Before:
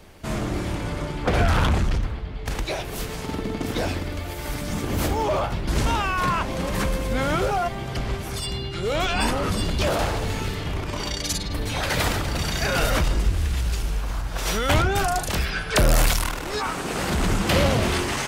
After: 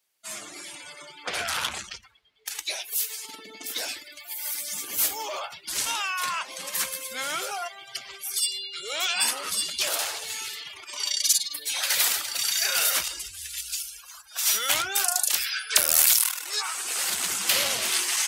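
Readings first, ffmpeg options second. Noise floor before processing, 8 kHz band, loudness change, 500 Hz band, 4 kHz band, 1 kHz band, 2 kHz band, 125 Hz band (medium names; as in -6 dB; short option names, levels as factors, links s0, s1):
-32 dBFS, +8.5 dB, 0.0 dB, -14.0 dB, +3.0 dB, -8.5 dB, -3.0 dB, under -30 dB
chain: -filter_complex "[0:a]aderivative,aeval=exprs='0.282*(cos(1*acos(clip(val(0)/0.282,-1,1)))-cos(1*PI/2))+0.0158*(cos(2*acos(clip(val(0)/0.282,-1,1)))-cos(2*PI/2))':c=same,asplit=2[s0][s1];[s1]asoftclip=type=hard:threshold=0.0447,volume=0.668[s2];[s0][s2]amix=inputs=2:normalize=0,afftdn=nr=25:nf=-42,volume=1.78"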